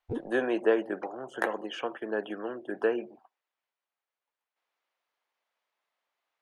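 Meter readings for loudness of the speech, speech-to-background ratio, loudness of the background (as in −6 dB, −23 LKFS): −31.5 LKFS, 8.0 dB, −39.5 LKFS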